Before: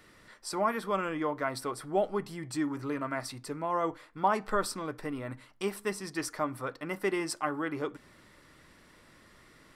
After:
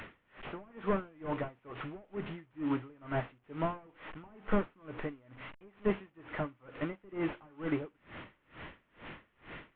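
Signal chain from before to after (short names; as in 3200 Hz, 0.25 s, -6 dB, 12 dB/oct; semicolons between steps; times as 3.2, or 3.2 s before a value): delta modulation 16 kbps, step -44 dBFS; dB-linear tremolo 2.2 Hz, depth 30 dB; gain +5.5 dB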